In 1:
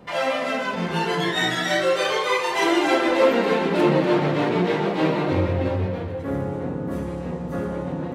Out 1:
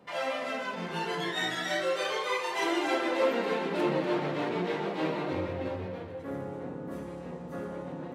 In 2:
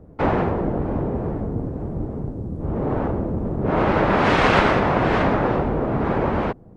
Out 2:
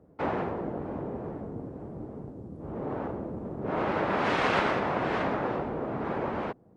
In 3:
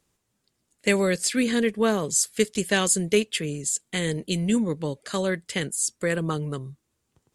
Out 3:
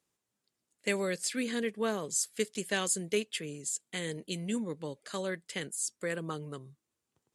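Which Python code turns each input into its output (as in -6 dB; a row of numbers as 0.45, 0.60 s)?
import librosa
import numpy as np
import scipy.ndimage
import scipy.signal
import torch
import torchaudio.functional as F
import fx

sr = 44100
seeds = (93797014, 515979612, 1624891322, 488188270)

y = fx.highpass(x, sr, hz=210.0, slope=6)
y = y * 10.0 ** (-8.5 / 20.0)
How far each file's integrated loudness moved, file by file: -9.5, -9.5, -9.5 LU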